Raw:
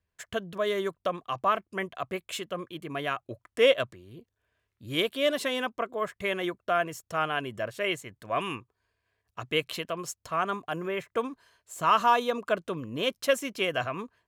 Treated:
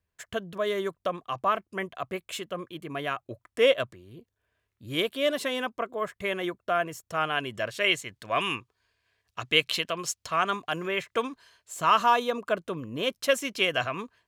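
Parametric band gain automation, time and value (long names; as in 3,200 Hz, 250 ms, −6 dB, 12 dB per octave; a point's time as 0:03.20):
parametric band 4,000 Hz 2.5 octaves
0:07.05 −0.5 dB
0:07.65 +9 dB
0:11.23 +9 dB
0:12.42 −0.5 dB
0:13.03 −0.5 dB
0:13.52 +6 dB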